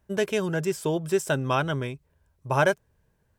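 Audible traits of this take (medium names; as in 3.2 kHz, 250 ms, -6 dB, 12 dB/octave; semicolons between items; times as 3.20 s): noise floor -70 dBFS; spectral tilt -5.5 dB/octave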